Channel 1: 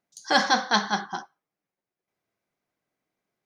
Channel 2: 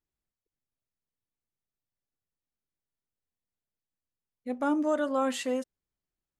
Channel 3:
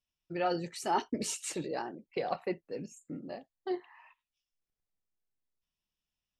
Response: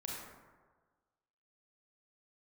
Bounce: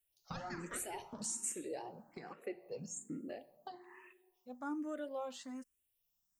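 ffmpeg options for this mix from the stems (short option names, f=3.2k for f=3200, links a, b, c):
-filter_complex "[0:a]highshelf=f=2.1k:g=-11,aeval=exprs='val(0)*sin(2*PI*690*n/s+690*0.8/2.2*sin(2*PI*2.2*n/s))':c=same,volume=-13dB,asplit=2[a][b];[b]volume=-13.5dB[c];[1:a]volume=-11.5dB[d];[2:a]alimiter=level_in=2.5dB:limit=-24dB:level=0:latency=1:release=270,volume=-2.5dB,aexciter=amount=5.2:drive=4.6:freq=6.5k,volume=0dB,asplit=2[e][f];[f]volume=-17dB[g];[a][e]amix=inputs=2:normalize=0,acompressor=threshold=-39dB:ratio=6,volume=0dB[h];[3:a]atrim=start_sample=2205[i];[c][g]amix=inputs=2:normalize=0[j];[j][i]afir=irnorm=-1:irlink=0[k];[d][h][k]amix=inputs=3:normalize=0,asplit=2[l][m];[m]afreqshift=1.2[n];[l][n]amix=inputs=2:normalize=1"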